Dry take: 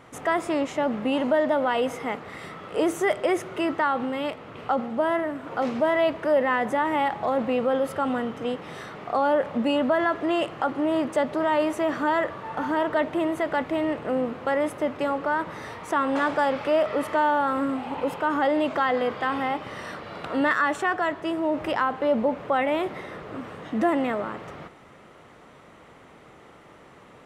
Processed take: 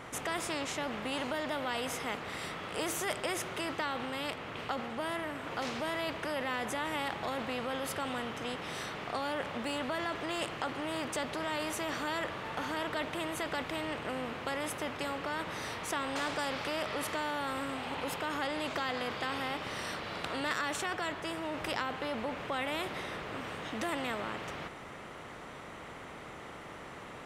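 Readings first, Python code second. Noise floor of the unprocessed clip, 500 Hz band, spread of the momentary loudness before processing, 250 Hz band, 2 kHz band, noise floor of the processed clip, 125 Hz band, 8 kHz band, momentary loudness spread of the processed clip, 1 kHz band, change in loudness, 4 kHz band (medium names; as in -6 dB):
-50 dBFS, -13.0 dB, 10 LU, -12.5 dB, -6.5 dB, -47 dBFS, -3.5 dB, +4.0 dB, 6 LU, -10.5 dB, -10.5 dB, 0.0 dB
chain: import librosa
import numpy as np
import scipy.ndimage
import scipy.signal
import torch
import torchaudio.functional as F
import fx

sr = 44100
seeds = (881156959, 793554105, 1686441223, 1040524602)

y = fx.spectral_comp(x, sr, ratio=2.0)
y = y * librosa.db_to_amplitude(-6.0)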